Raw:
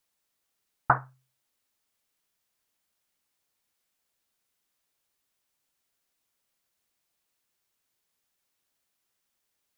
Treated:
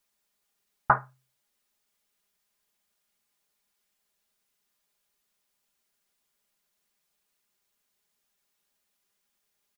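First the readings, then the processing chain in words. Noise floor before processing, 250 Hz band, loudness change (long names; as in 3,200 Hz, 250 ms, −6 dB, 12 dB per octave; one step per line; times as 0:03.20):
−80 dBFS, −0.5 dB, +1.0 dB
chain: comb filter 4.9 ms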